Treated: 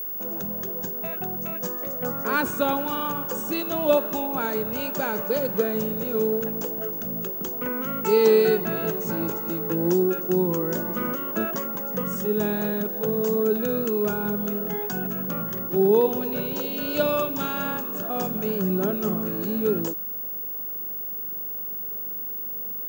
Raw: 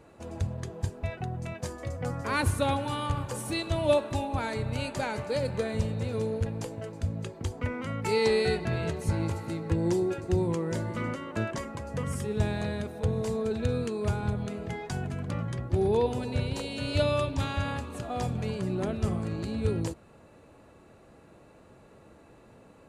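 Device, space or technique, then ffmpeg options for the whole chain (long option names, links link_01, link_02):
old television with a line whistle: -filter_complex "[0:a]asettb=1/sr,asplit=3[link_01][link_02][link_03];[link_01]atrim=end=15.704[link_04];[link_02]atrim=start=15.7:end=16.9,asetpts=PTS-STARTPTS,afade=type=in:duration=0.004:curve=qsin,afade=type=out:start_time=1.196:duration=0.004:curve=qsin,lowpass=frequency=6800:width=0.5412,lowpass=frequency=6800:width=1.3066[link_05];[link_03]atrim=start=16.896[link_06];[link_04][link_05]acrossfade=duration=0.004:curve1=hsin:curve2=qsin[link_07];[link_07][link_06]acrossfade=duration=0.004:curve1=qsin:curve2=hsin,highpass=frequency=190:width=0.5412,highpass=frequency=190:width=1.3066,equalizer=frequency=190:width_type=q:width=4:gain=9,equalizer=frequency=420:width_type=q:width=4:gain=6,equalizer=frequency=1400:width_type=q:width=4:gain=6,equalizer=frequency=2100:width_type=q:width=4:gain=-8,equalizer=frequency=4200:width_type=q:width=4:gain=-6,equalizer=frequency=6300:width_type=q:width=4:gain=5,lowpass=frequency=8000:width=0.5412,lowpass=frequency=8000:width=1.3066,aeval=exprs='val(0)+0.0251*sin(2*PI*15625*n/s)':channel_layout=same,volume=3dB"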